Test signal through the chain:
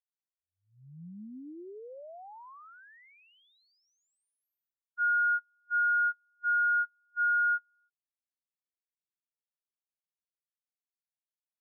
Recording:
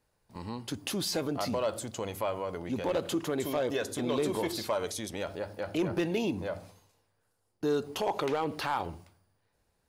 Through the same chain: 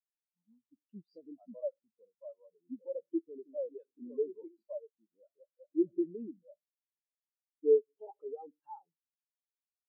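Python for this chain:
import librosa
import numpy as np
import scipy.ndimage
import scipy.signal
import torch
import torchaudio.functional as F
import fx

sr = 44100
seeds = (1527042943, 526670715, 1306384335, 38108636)

y = fx.law_mismatch(x, sr, coded='mu')
y = scipy.signal.sosfilt(scipy.signal.butter(4, 130.0, 'highpass', fs=sr, output='sos'), y)
y = fx.dispersion(y, sr, late='highs', ms=49.0, hz=2600.0)
y = fx.spectral_expand(y, sr, expansion=4.0)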